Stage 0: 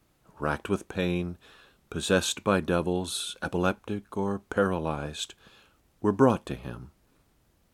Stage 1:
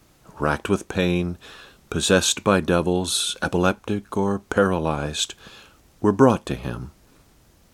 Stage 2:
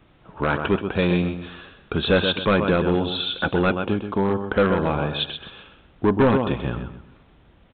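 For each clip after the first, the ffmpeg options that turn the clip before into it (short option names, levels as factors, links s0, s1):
-filter_complex "[0:a]asplit=2[s0][s1];[s1]acompressor=threshold=0.0178:ratio=6,volume=1[s2];[s0][s2]amix=inputs=2:normalize=0,equalizer=f=6000:w=1.3:g=4,volume=1.68"
-af "aecho=1:1:129|258|387:0.355|0.106|0.0319,aresample=8000,asoftclip=type=hard:threshold=0.211,aresample=44100,volume=1.19"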